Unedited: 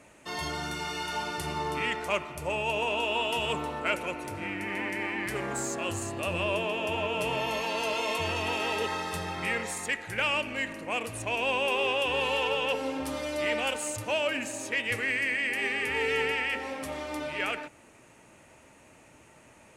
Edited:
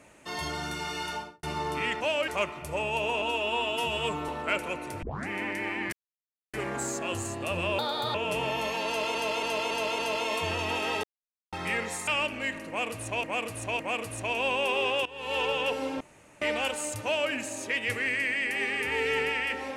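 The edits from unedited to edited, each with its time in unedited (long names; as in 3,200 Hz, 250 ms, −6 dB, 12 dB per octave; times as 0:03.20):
0:01.07–0:01.43: fade out and dull
0:02.95–0:03.66: time-stretch 1.5×
0:04.40: tape start 0.26 s
0:05.30: splice in silence 0.61 s
0:06.55–0:07.04: play speed 136%
0:07.76–0:08.04: repeat, 5 plays
0:08.81–0:09.30: silence
0:09.85–0:10.22: remove
0:10.82–0:11.38: repeat, 3 plays
0:12.08–0:12.40: fade in quadratic, from −18.5 dB
0:13.03–0:13.44: fill with room tone
0:14.07–0:14.34: duplicate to 0:02.01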